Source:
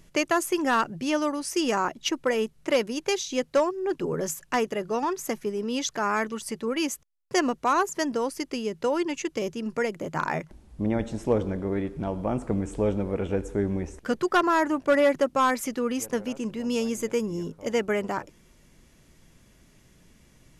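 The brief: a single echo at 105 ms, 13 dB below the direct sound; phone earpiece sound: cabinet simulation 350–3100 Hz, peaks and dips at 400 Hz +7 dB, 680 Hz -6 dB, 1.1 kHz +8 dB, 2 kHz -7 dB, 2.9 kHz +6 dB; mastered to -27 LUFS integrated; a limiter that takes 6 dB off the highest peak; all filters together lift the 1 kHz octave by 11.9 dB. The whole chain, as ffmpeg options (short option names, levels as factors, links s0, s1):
-af "equalizer=f=1000:t=o:g=9,alimiter=limit=0.251:level=0:latency=1,highpass=350,equalizer=f=400:t=q:w=4:g=7,equalizer=f=680:t=q:w=4:g=-6,equalizer=f=1100:t=q:w=4:g=8,equalizer=f=2000:t=q:w=4:g=-7,equalizer=f=2900:t=q:w=4:g=6,lowpass=f=3100:w=0.5412,lowpass=f=3100:w=1.3066,aecho=1:1:105:0.224,volume=0.668"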